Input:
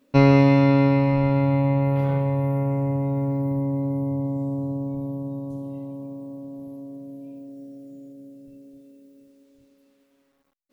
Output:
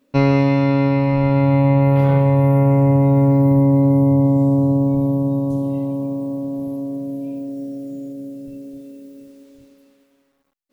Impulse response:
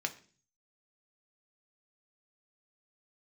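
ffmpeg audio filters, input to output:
-af "dynaudnorm=f=100:g=21:m=12dB"

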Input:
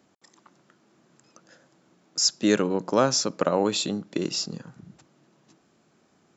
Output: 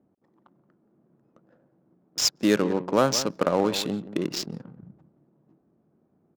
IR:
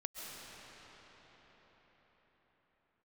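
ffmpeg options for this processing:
-filter_complex "[0:a]asplit=2[a][b];[b]adelay=174.9,volume=-13dB,highshelf=f=4k:g=-3.94[c];[a][c]amix=inputs=2:normalize=0,adynamicsmooth=sensitivity=5.5:basefreq=550"

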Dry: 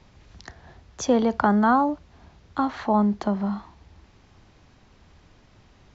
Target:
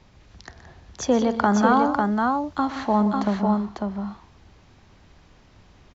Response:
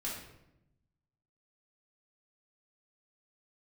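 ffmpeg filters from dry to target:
-filter_complex "[0:a]asettb=1/sr,asplit=3[a][b][c];[a]atrim=end=1.174[d];[b]atrim=start=1.17:end=3.11,asetpts=PTS-STARTPTS,afade=t=in:d=0.004:c=qsin,afade=t=out:st=1.936:d=0.004:c=qsin,highshelf=f=4.5k:g=7.5[e];[c]atrim=start=3.106[f];[d][e]acrossfade=d=0.004:c1=hsin:c2=qsin[g];[g][f]acrossfade=d=0.004:c1=qsin:c2=hsin,aecho=1:1:123|172|548:0.211|0.211|0.668"

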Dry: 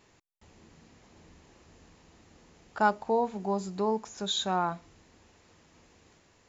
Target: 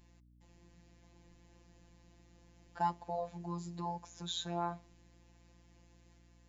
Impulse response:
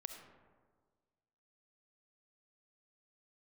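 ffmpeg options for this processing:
-af "bandreject=f=1.3k:w=5.4,afftfilt=real='hypot(re,im)*cos(PI*b)':imag='0':win_size=1024:overlap=0.75,aeval=exprs='val(0)+0.00141*(sin(2*PI*60*n/s)+sin(2*PI*2*60*n/s)/2+sin(2*PI*3*60*n/s)/3+sin(2*PI*4*60*n/s)/4+sin(2*PI*5*60*n/s)/5)':c=same,volume=-5.5dB"

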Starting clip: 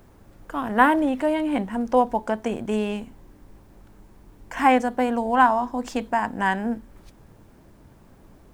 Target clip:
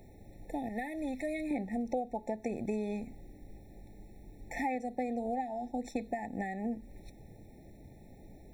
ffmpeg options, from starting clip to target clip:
-filter_complex "[0:a]asettb=1/sr,asplit=3[a][b][c];[a]atrim=end=0.694[d];[b]atrim=start=0.69:end=1.51,asetpts=PTS-STARTPTS,afade=t=in:d=0.004:c=qsin,afade=t=out:st=0.816:d=0.004:c=qsin,equalizer=f=410:w=0.4:g=-10.5[e];[c]atrim=start=1.506[f];[d][e]acrossfade=d=0.004:c1=hsin:c2=qsin[g];[g][f]acrossfade=d=0.004:c1=qsin:c2=hsin,asettb=1/sr,asplit=3[h][i][j];[h]atrim=end=4.754[k];[i]atrim=start=4.75:end=5.97,asetpts=PTS-STARTPTS,afade=t=in:d=0.004:c=qsin,afade=t=out:st=1.216:d=0.004:c=qsin,agate=range=-33dB:threshold=-29dB:ratio=3:detection=peak[l];[j]atrim=start=5.966[m];[k][l]acrossfade=d=0.004:c1=hsin:c2=qsin[n];[n][m]acrossfade=d=0.004:c1=qsin:c2=hsin,acompressor=threshold=-29dB:ratio=6,afftfilt=real='re*eq(mod(floor(b*sr/1024/870),2),0)':imag='im*eq(mod(floor(b*sr/1024/870),2),0)':win_size=1024:overlap=0.75,volume=-2dB"

